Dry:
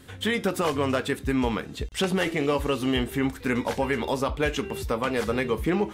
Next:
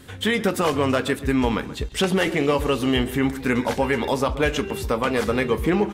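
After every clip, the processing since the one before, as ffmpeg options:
-filter_complex "[0:a]asplit=2[s0][s1];[s1]adelay=131,lowpass=f=1900:p=1,volume=0.2,asplit=2[s2][s3];[s3]adelay=131,lowpass=f=1900:p=1,volume=0.31,asplit=2[s4][s5];[s5]adelay=131,lowpass=f=1900:p=1,volume=0.31[s6];[s0][s2][s4][s6]amix=inputs=4:normalize=0,volume=1.58"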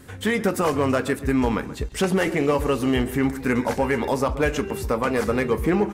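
-af "asoftclip=type=hard:threshold=0.237,equalizer=f=3400:t=o:w=0.7:g=-8"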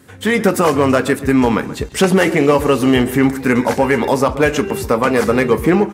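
-af "highpass=99,dynaudnorm=f=170:g=3:m=3.76"

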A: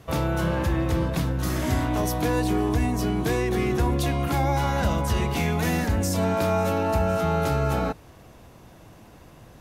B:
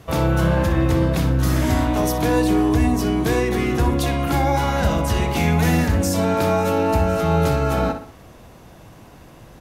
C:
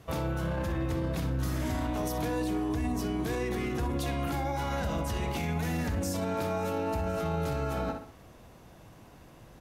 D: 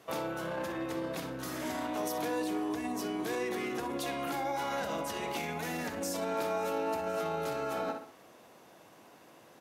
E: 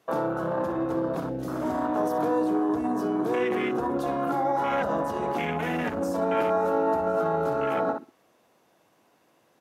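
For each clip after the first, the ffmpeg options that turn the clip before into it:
-filter_complex "[0:a]asplit=2[s0][s1];[s1]adelay=61,lowpass=f=4800:p=1,volume=0.398,asplit=2[s2][s3];[s3]adelay=61,lowpass=f=4800:p=1,volume=0.42,asplit=2[s4][s5];[s5]adelay=61,lowpass=f=4800:p=1,volume=0.42,asplit=2[s6][s7];[s7]adelay=61,lowpass=f=4800:p=1,volume=0.42,asplit=2[s8][s9];[s9]adelay=61,lowpass=f=4800:p=1,volume=0.42[s10];[s0][s2][s4][s6][s8][s10]amix=inputs=6:normalize=0,volume=1.58"
-af "alimiter=limit=0.178:level=0:latency=1:release=34,volume=0.376"
-af "highpass=310"
-af "afwtdn=0.0126,volume=2.82"

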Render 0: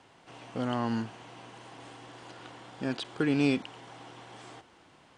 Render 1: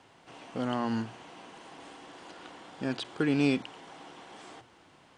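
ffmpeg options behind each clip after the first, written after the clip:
-af "bandreject=f=60:t=h:w=6,bandreject=f=120:t=h:w=6"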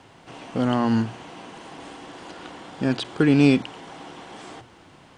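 -af "lowshelf=f=240:g=6.5,volume=2.24"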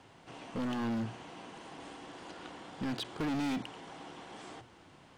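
-af "volume=15.8,asoftclip=hard,volume=0.0631,volume=0.422"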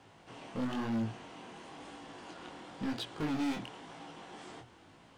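-af "flanger=delay=17.5:depth=7.6:speed=0.99,volume=1.26"

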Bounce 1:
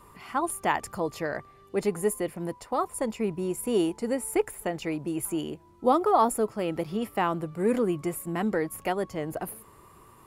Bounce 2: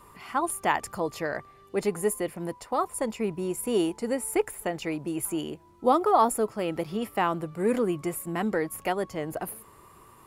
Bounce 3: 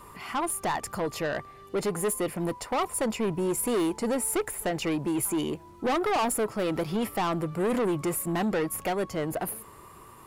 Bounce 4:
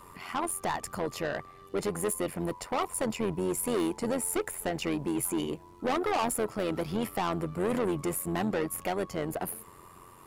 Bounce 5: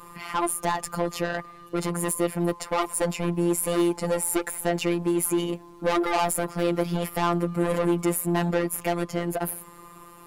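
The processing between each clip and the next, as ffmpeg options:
-af "lowshelf=f=450:g=-3,volume=1.19"
-filter_complex "[0:a]asplit=2[s0][s1];[s1]alimiter=limit=0.1:level=0:latency=1:release=329,volume=1[s2];[s0][s2]amix=inputs=2:normalize=0,dynaudnorm=f=270:g=13:m=1.41,asoftclip=type=tanh:threshold=0.0841,volume=0.841"
-af "tremolo=f=89:d=0.621"
-af "afftfilt=real='hypot(re,im)*cos(PI*b)':imag='0':win_size=1024:overlap=0.75,volume=2.66"

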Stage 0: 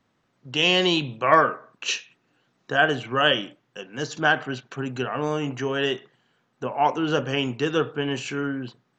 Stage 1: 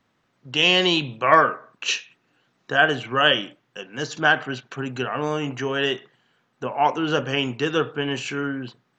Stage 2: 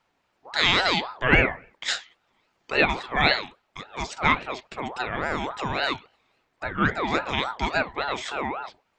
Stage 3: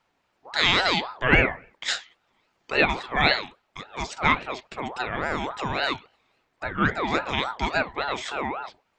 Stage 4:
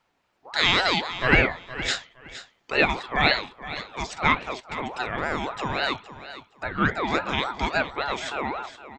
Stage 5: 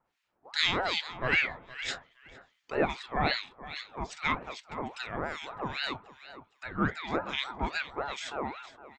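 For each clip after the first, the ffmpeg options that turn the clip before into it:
-af "equalizer=f=2200:t=o:w=2.6:g=3"
-af "aeval=exprs='val(0)*sin(2*PI*820*n/s+820*0.4/3.6*sin(2*PI*3.6*n/s))':c=same"
-af anull
-af "aecho=1:1:465|930:0.2|0.0419"
-filter_complex "[0:a]acrossover=split=1500[s0][s1];[s0]aeval=exprs='val(0)*(1-1/2+1/2*cos(2*PI*2.5*n/s))':c=same[s2];[s1]aeval=exprs='val(0)*(1-1/2-1/2*cos(2*PI*2.5*n/s))':c=same[s3];[s2][s3]amix=inputs=2:normalize=0,volume=0.708"

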